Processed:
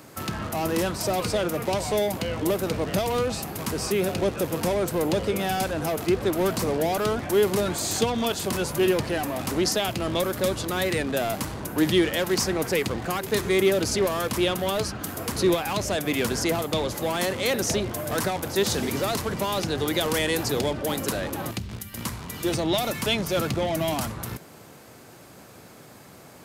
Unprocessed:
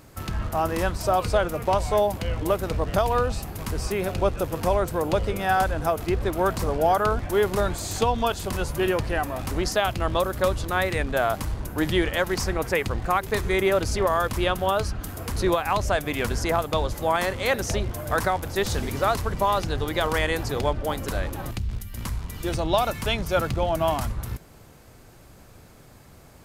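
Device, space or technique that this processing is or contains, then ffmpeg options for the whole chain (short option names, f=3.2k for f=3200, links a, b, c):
one-band saturation: -filter_complex "[0:a]highpass=160,asettb=1/sr,asplit=3[a][b][c];[a]atrim=end=19.774[d];[b]atrim=start=19.77:end=21.11,asetpts=PTS-STARTPTS,afade=t=in:d=0.004:c=qsin,afade=t=out:st=1.336:d=0.004:c=qsin,highshelf=f=4.9k:g=3.5[e];[c]atrim=start=21.106[f];[d][e]acrossfade=d=0.004:c1=hsin:c2=qsin[g];[g][f]acrossfade=d=0.004:c1=qsin:c2=hsin,acrossover=split=420|2800[h][i][j];[i]asoftclip=type=tanh:threshold=-34.5dB[k];[h][k][j]amix=inputs=3:normalize=0,volume=5dB"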